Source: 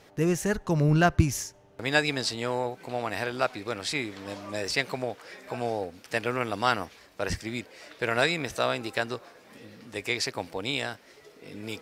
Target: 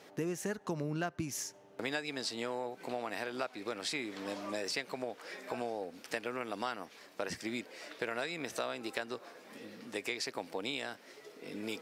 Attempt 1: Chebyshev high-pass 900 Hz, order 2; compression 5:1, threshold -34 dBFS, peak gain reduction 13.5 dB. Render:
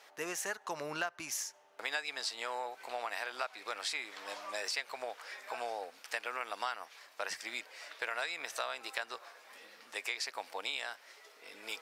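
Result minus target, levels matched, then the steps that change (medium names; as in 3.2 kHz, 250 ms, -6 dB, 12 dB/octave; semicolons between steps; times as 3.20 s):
250 Hz band -13.5 dB
change: Chebyshev high-pass 230 Hz, order 2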